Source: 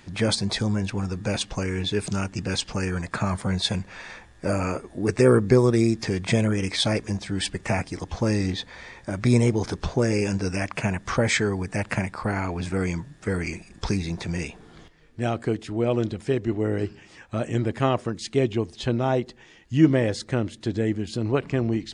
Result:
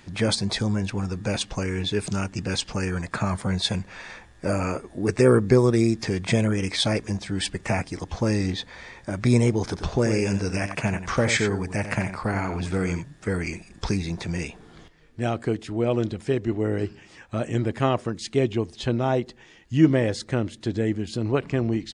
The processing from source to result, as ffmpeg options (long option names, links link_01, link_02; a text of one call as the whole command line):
ffmpeg -i in.wav -filter_complex "[0:a]asplit=3[link_01][link_02][link_03];[link_01]afade=type=out:start_time=9.75:duration=0.02[link_04];[link_02]aecho=1:1:90:0.335,afade=type=in:start_time=9.75:duration=0.02,afade=type=out:start_time=13.02:duration=0.02[link_05];[link_03]afade=type=in:start_time=13.02:duration=0.02[link_06];[link_04][link_05][link_06]amix=inputs=3:normalize=0" out.wav